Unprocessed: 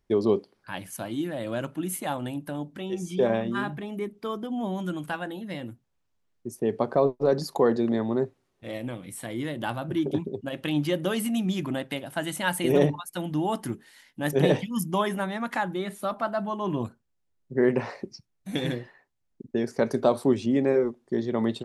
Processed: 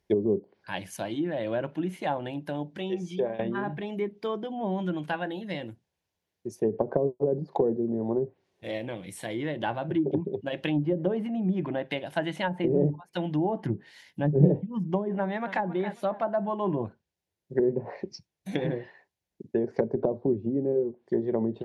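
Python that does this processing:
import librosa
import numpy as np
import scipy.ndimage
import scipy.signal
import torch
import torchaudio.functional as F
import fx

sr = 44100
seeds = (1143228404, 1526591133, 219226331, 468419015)

y = fx.peak_eq(x, sr, hz=120.0, db=8.5, octaves=1.6, at=(13.63, 14.49))
y = fx.echo_throw(y, sr, start_s=15.19, length_s=0.48, ms=270, feedback_pct=25, wet_db=-13.5)
y = fx.edit(y, sr, fx.fade_out_to(start_s=2.7, length_s=0.69, curve='qsin', floor_db=-18.0), tone=tone)
y = scipy.signal.sosfilt(scipy.signal.butter(2, 77.0, 'highpass', fs=sr, output='sos'), y)
y = fx.env_lowpass_down(y, sr, base_hz=330.0, full_db=-20.5)
y = fx.graphic_eq_31(y, sr, hz=(125, 250, 1250, 8000), db=(-7, -10, -11, -5))
y = y * 10.0 ** (3.0 / 20.0)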